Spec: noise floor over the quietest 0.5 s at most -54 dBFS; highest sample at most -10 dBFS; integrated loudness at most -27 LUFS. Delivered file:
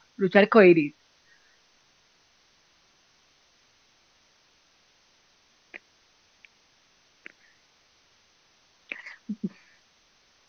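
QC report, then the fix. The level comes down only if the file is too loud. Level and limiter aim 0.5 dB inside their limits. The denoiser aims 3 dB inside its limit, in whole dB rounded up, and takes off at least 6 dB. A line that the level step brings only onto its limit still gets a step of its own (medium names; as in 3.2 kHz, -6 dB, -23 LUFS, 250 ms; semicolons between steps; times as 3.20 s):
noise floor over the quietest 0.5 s -64 dBFS: pass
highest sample -3.5 dBFS: fail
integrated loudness -22.0 LUFS: fail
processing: trim -5.5 dB; peak limiter -10.5 dBFS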